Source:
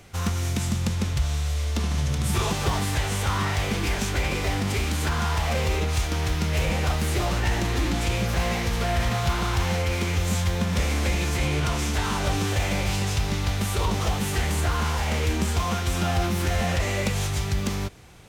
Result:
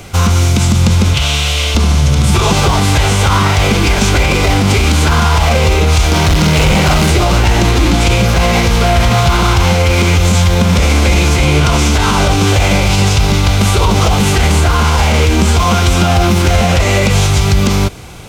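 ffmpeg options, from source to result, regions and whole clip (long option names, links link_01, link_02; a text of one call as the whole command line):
ffmpeg -i in.wav -filter_complex "[0:a]asettb=1/sr,asplit=3[link_01][link_02][link_03];[link_01]atrim=end=1.144[link_04];[link_02]atrim=start=1.14:end=1.75,asetpts=PTS-STARTPTS,afade=type=in:duration=0.004:curve=qsin,afade=type=out:start_time=0.606:duration=0.004:curve=qsin,highpass=frequency=180:poles=1,equalizer=frequency=2900:width=1.7:gain=10.5[link_05];[link_03]atrim=start=1.746[link_06];[link_04][link_05]acrossfade=duration=0.004:curve1=hsin:curve2=qsin[link_07];[link_07][link_06]acrossfade=duration=0.004:curve1=qsin:curve2=hsin,asettb=1/sr,asplit=3[link_08][link_09][link_10];[link_08]atrim=end=6.094[link_11];[link_09]atrim=start=6.09:end=7.11,asetpts=PTS-STARTPTS,afade=type=in:duration=0.004:curve=qsin,afade=type=out:start_time=1.016:duration=0.004:curve=qsin,asplit=2[link_12][link_13];[link_13]adelay=46,volume=-2.5dB[link_14];[link_12][link_14]amix=inputs=2:normalize=0,atrim=end_sample=44982,volume=24dB,asoftclip=hard,volume=-24dB[link_15];[link_10]atrim=start=7.106[link_16];[link_11][link_15]acrossfade=duration=0.004:curve1=hsin:curve2=qsin[link_17];[link_17][link_16]acrossfade=duration=0.004:curve1=qsin:curve2=hsin,bandreject=frequency=1800:width=7.4,acrossover=split=8100[link_18][link_19];[link_19]acompressor=threshold=-47dB:ratio=4:attack=1:release=60[link_20];[link_18][link_20]amix=inputs=2:normalize=0,alimiter=level_in=18.5dB:limit=-1dB:release=50:level=0:latency=1,volume=-1dB" out.wav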